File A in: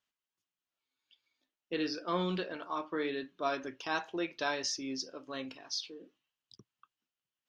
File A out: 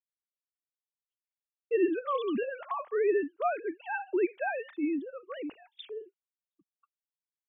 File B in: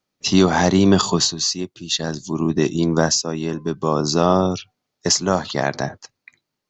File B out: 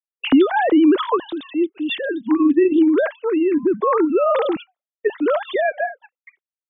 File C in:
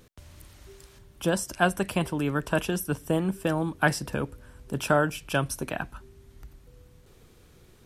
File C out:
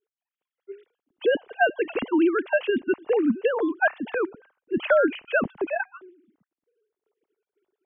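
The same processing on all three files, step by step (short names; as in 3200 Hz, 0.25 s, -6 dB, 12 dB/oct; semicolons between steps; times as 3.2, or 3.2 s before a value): sine-wave speech; expander -47 dBFS; low shelf 390 Hz +10 dB; compressor 2:1, threshold -17 dBFS; gain +1 dB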